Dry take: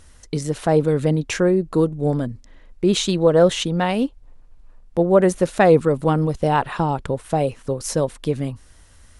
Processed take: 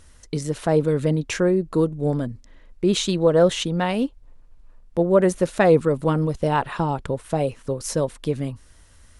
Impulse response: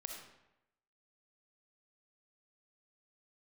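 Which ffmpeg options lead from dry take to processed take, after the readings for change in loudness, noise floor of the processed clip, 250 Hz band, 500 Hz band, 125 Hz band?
−2.0 dB, −50 dBFS, −2.0 dB, −2.0 dB, −2.0 dB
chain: -af "bandreject=frequency=770:width=16,volume=-2dB"

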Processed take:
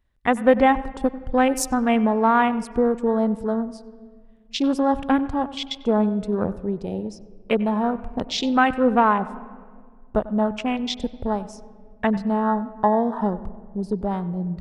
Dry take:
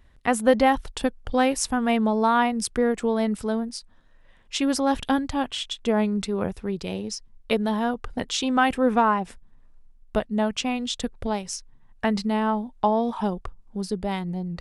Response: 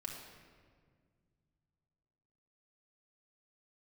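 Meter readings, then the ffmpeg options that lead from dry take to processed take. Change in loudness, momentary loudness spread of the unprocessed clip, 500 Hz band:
+2.5 dB, 10 LU, +2.5 dB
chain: -filter_complex "[0:a]afwtdn=0.0282,asplit=2[link_01][link_02];[1:a]atrim=start_sample=2205,lowpass=3400,adelay=95[link_03];[link_02][link_03]afir=irnorm=-1:irlink=0,volume=-13dB[link_04];[link_01][link_04]amix=inputs=2:normalize=0,volume=2.5dB"

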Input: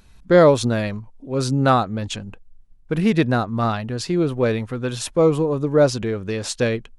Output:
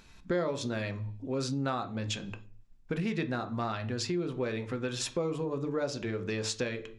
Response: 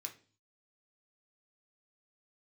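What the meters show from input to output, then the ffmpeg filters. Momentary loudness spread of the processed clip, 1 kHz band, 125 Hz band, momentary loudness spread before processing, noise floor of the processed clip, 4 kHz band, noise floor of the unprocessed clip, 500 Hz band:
4 LU, −14.5 dB, −13.0 dB, 12 LU, −54 dBFS, −7.5 dB, −49 dBFS, −15.0 dB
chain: -filter_complex "[0:a]asplit=2[link_01][link_02];[1:a]atrim=start_sample=2205,lowpass=7400[link_03];[link_02][link_03]afir=irnorm=-1:irlink=0,volume=5.5dB[link_04];[link_01][link_04]amix=inputs=2:normalize=0,acompressor=threshold=-26dB:ratio=4,volume=-5.5dB"

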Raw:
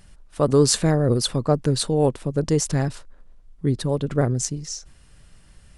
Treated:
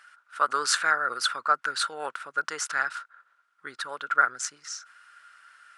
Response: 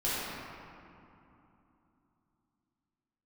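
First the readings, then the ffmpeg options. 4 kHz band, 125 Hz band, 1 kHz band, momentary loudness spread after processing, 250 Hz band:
−2.5 dB, below −35 dB, +5.5 dB, 15 LU, −28.0 dB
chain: -af "highpass=frequency=1400:width_type=q:width=12,highshelf=frequency=5100:gain=-9"

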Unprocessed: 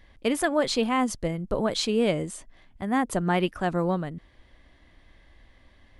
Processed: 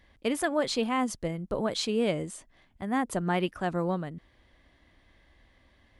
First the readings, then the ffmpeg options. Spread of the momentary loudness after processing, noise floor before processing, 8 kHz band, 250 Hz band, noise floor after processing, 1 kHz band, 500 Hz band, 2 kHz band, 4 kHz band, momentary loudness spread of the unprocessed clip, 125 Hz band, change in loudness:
13 LU, −58 dBFS, −3.5 dB, −3.5 dB, −64 dBFS, −3.5 dB, −3.5 dB, −3.5 dB, −3.5 dB, 13 LU, −4.0 dB, −3.5 dB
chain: -af "highpass=frequency=45:poles=1,volume=-3.5dB"

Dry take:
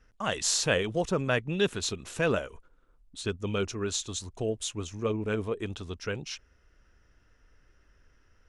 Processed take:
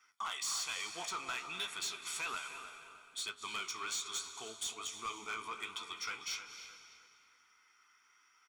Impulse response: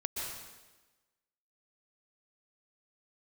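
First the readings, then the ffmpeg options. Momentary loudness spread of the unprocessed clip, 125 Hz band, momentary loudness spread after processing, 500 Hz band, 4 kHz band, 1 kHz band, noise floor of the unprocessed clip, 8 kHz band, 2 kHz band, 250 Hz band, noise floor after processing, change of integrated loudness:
10 LU, −32.0 dB, 12 LU, −24.0 dB, −4.5 dB, −4.0 dB, −65 dBFS, −6.0 dB, −7.0 dB, −24.5 dB, −69 dBFS, −9.0 dB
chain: -filter_complex "[0:a]highpass=1200,aecho=1:1:0.9:0.92,acompressor=threshold=-36dB:ratio=3,flanger=delay=9.2:depth=8.5:regen=52:speed=1.2:shape=sinusoidal,asoftclip=type=tanh:threshold=-39dB,flanger=delay=9.9:depth=3.1:regen=-86:speed=0.34:shape=triangular,asplit=2[link_01][link_02];[link_02]adelay=308,lowpass=frequency=3200:poles=1,volume=-10.5dB,asplit=2[link_03][link_04];[link_04]adelay=308,lowpass=frequency=3200:poles=1,volume=0.42,asplit=2[link_05][link_06];[link_06]adelay=308,lowpass=frequency=3200:poles=1,volume=0.42,asplit=2[link_07][link_08];[link_08]adelay=308,lowpass=frequency=3200:poles=1,volume=0.42[link_09];[link_01][link_03][link_05][link_07][link_09]amix=inputs=5:normalize=0,asplit=2[link_10][link_11];[1:a]atrim=start_sample=2205,asetrate=26460,aresample=44100[link_12];[link_11][link_12]afir=irnorm=-1:irlink=0,volume=-13dB[link_13];[link_10][link_13]amix=inputs=2:normalize=0,volume=8.5dB"

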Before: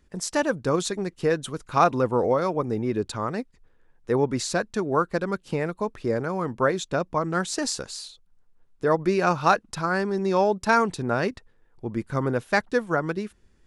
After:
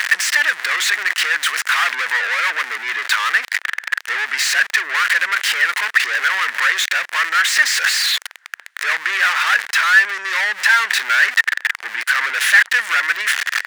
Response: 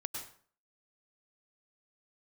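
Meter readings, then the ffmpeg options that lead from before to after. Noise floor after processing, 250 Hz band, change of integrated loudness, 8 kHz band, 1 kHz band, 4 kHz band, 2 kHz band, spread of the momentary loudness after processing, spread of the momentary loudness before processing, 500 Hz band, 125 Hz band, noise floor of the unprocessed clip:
−45 dBFS, below −20 dB, +9.5 dB, +12.0 dB, +3.0 dB, +17.5 dB, +19.0 dB, 8 LU, 9 LU, −15.5 dB, below −35 dB, −61 dBFS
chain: -filter_complex "[0:a]aeval=exprs='val(0)+0.5*0.0668*sgn(val(0))':channel_layout=same,asplit=2[link_01][link_02];[link_02]highpass=frequency=720:poles=1,volume=36dB,asoftclip=type=tanh:threshold=-5dB[link_03];[link_01][link_03]amix=inputs=2:normalize=0,lowpass=frequency=4400:poles=1,volume=-6dB,highpass=frequency=1800:width_type=q:width=4.5,volume=-5.5dB"

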